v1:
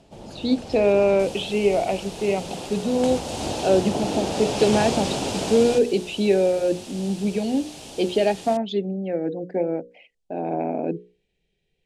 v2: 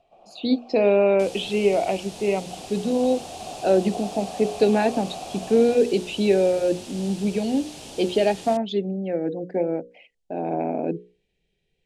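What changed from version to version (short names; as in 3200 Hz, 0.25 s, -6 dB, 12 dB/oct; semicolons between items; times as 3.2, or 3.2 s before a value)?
first sound: add vowel filter a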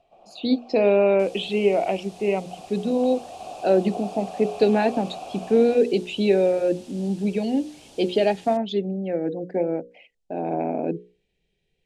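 second sound -9.0 dB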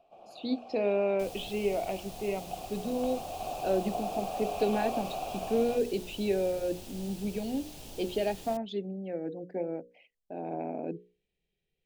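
speech -10.0 dB; second sound: remove HPF 200 Hz 6 dB/oct; master: remove LPF 10000 Hz 24 dB/oct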